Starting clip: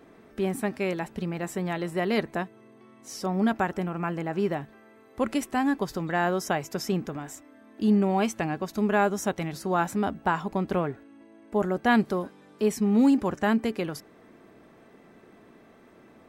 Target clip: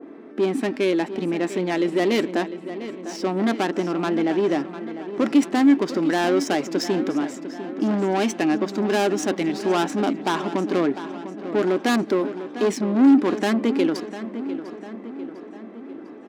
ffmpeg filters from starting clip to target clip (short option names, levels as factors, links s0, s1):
-filter_complex "[0:a]asoftclip=type=tanh:threshold=0.0501,highpass=f=290:t=q:w=3.5,asplit=2[s0][s1];[s1]aecho=0:1:700|1400|2100|2800|3500|4200:0.251|0.146|0.0845|0.049|0.0284|0.0165[s2];[s0][s2]amix=inputs=2:normalize=0,adynamicsmooth=sensitivity=7:basefreq=3300,adynamicequalizer=threshold=0.00501:dfrequency=1900:dqfactor=0.7:tfrequency=1900:tqfactor=0.7:attack=5:release=100:ratio=0.375:range=3:mode=boostabove:tftype=highshelf,volume=2"